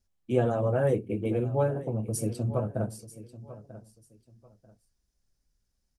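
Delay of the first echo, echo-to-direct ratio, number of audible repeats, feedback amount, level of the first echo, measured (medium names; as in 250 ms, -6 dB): 941 ms, -16.0 dB, 2, 25%, -16.0 dB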